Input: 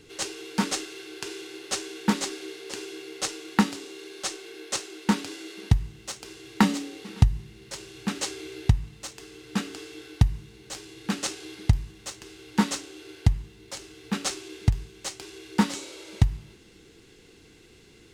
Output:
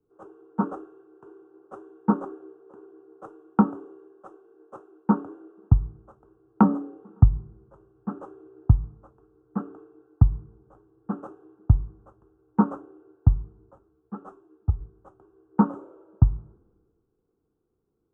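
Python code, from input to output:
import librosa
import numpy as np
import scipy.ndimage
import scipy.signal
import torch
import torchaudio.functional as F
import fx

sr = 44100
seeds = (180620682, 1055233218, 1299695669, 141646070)

y = fx.ensemble(x, sr, at=(13.77, 14.79), fade=0.02)
y = scipy.signal.sosfilt(scipy.signal.ellip(4, 1.0, 40, 1300.0, 'lowpass', fs=sr, output='sos'), y)
y = fx.band_widen(y, sr, depth_pct=70)
y = F.gain(torch.from_numpy(y), -2.0).numpy()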